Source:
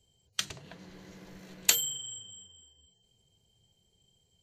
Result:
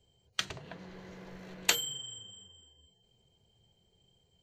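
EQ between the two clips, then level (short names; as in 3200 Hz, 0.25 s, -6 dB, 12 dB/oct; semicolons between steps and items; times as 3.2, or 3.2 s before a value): low shelf 390 Hz -3.5 dB; bell 12000 Hz -14.5 dB 2.3 oct; notches 50/100/150/200/250/300 Hz; +5.5 dB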